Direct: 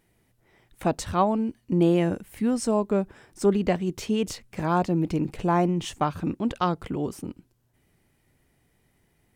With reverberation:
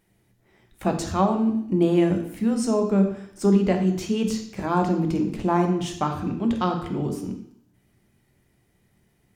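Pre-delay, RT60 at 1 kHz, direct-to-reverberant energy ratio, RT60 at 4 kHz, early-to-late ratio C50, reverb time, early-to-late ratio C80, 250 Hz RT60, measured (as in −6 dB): 3 ms, 0.70 s, 4.0 dB, 0.70 s, 8.0 dB, 0.70 s, 10.5 dB, 0.70 s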